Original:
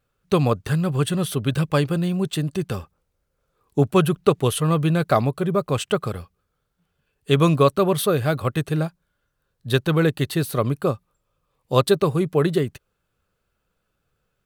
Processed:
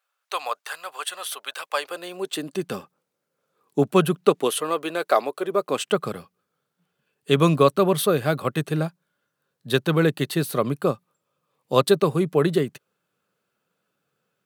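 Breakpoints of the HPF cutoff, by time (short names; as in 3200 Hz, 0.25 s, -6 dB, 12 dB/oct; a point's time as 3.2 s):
HPF 24 dB/oct
1.67 s 720 Hz
2.76 s 170 Hz
4.17 s 170 Hz
4.74 s 360 Hz
5.36 s 360 Hz
6.1 s 150 Hz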